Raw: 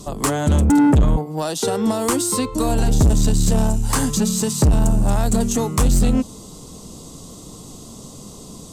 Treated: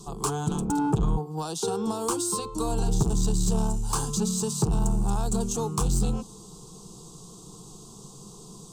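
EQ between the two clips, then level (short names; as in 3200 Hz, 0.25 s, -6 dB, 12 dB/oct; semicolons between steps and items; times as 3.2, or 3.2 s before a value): bell 12000 Hz -11 dB 0.27 oct; fixed phaser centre 390 Hz, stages 8; -5.0 dB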